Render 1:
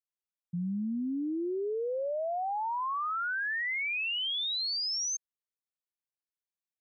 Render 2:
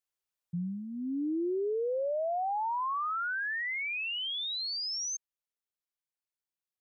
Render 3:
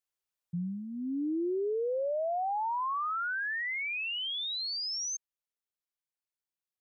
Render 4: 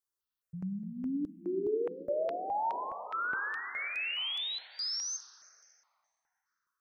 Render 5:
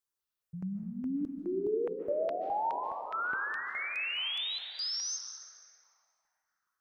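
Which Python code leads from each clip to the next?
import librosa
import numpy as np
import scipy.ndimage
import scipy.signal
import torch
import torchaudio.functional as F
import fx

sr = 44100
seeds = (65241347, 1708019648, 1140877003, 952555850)

y1 = fx.peak_eq(x, sr, hz=220.0, db=-12.0, octaves=0.45)
y1 = fx.rider(y1, sr, range_db=4, speed_s=0.5)
y2 = y1
y3 = fx.rev_plate(y2, sr, seeds[0], rt60_s=4.3, hf_ratio=0.4, predelay_ms=0, drr_db=7.5)
y3 = fx.phaser_held(y3, sr, hz=4.8, low_hz=680.0, high_hz=5200.0)
y4 = fx.rev_freeverb(y3, sr, rt60_s=1.4, hf_ratio=0.95, predelay_ms=105, drr_db=8.0)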